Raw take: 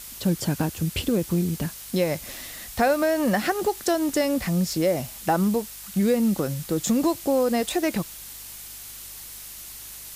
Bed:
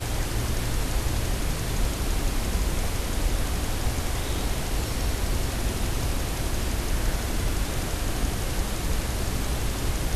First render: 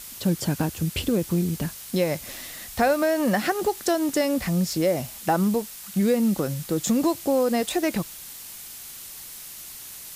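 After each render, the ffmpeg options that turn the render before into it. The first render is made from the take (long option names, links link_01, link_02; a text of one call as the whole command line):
ffmpeg -i in.wav -af "bandreject=frequency=50:width_type=h:width=4,bandreject=frequency=100:width_type=h:width=4" out.wav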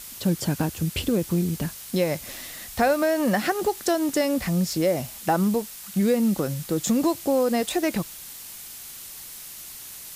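ffmpeg -i in.wav -af anull out.wav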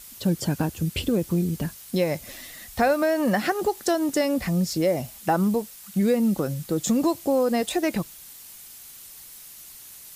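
ffmpeg -i in.wav -af "afftdn=noise_reduction=6:noise_floor=-41" out.wav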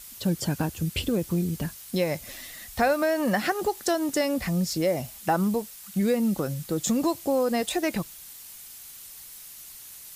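ffmpeg -i in.wav -af "equalizer=frequency=300:width_type=o:width=2.7:gain=-3" out.wav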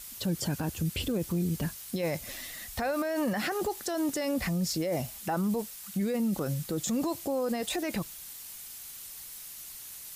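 ffmpeg -i in.wav -af "alimiter=limit=-22.5dB:level=0:latency=1:release=17" out.wav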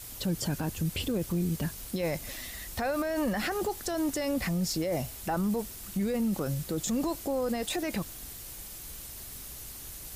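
ffmpeg -i in.wav -i bed.wav -filter_complex "[1:a]volume=-23dB[link_01];[0:a][link_01]amix=inputs=2:normalize=0" out.wav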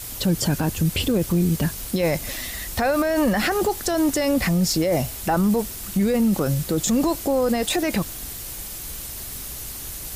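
ffmpeg -i in.wav -af "volume=9.5dB" out.wav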